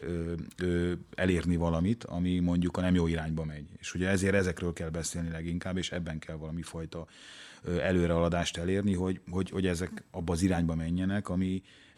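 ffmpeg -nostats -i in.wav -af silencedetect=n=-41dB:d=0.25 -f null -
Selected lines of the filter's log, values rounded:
silence_start: 11.59
silence_end: 11.98 | silence_duration: 0.39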